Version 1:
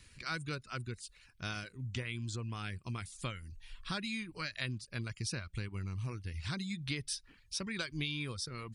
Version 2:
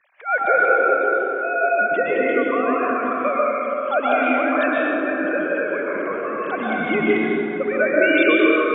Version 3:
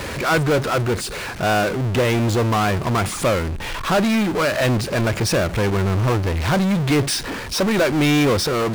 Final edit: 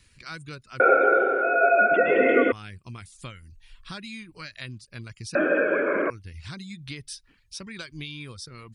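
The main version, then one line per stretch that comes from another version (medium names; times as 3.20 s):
1
0.80–2.52 s: from 2
5.35–6.10 s: from 2
not used: 3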